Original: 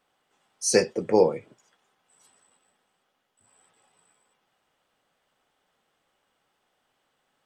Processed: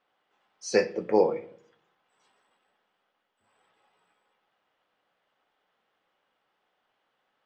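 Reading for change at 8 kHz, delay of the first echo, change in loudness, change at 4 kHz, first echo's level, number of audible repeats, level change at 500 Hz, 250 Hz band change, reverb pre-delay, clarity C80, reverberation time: -12.5 dB, no echo, -3.0 dB, -7.5 dB, no echo, no echo, -2.5 dB, -3.5 dB, 5 ms, 20.0 dB, 0.60 s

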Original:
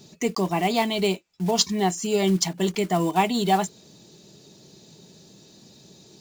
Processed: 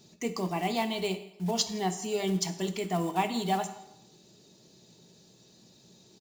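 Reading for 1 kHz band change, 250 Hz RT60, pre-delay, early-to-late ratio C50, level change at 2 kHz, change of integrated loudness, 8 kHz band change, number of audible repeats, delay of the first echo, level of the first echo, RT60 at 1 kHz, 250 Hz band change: -7.0 dB, 0.75 s, 14 ms, 12.0 dB, -7.0 dB, -7.5 dB, -7.0 dB, 2, 164 ms, -22.5 dB, 0.85 s, -7.5 dB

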